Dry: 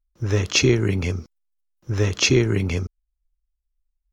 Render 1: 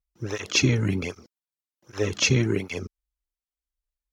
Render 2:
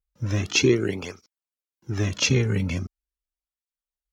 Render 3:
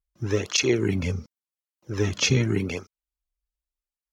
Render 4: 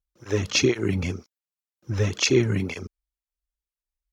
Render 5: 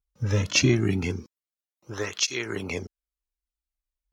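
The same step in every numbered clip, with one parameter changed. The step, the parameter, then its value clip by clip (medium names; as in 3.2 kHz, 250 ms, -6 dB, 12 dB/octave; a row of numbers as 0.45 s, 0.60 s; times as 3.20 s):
cancelling through-zero flanger, nulls at: 1.3 Hz, 0.41 Hz, 0.87 Hz, 2 Hz, 0.22 Hz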